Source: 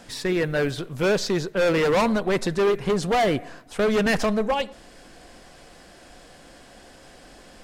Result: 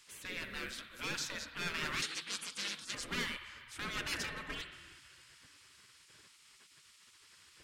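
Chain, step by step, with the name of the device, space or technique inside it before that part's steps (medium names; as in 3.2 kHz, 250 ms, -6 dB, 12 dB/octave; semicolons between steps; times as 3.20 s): dub delay into a spring reverb (filtered feedback delay 409 ms, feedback 66%, low-pass 1.2 kHz, level -22.5 dB; spring tank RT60 2 s, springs 53 ms, chirp 45 ms, DRR 8 dB); 2.02–2.95 s: frequency weighting ITU-R 468; spectral gate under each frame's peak -15 dB weak; peaking EQ 740 Hz -13.5 dB 0.85 oct; trim -7 dB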